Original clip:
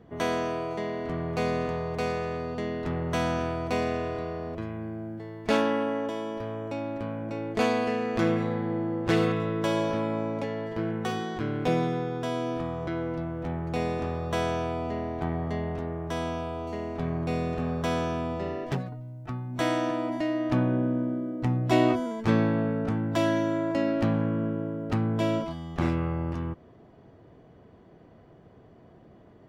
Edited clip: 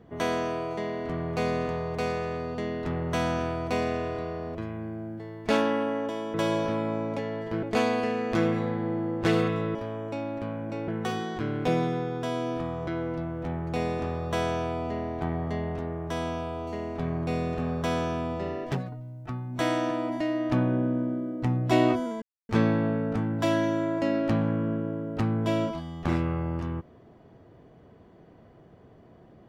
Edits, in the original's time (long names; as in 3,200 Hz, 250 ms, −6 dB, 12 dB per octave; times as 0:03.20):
0:06.34–0:07.47: swap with 0:09.59–0:10.88
0:22.22: splice in silence 0.27 s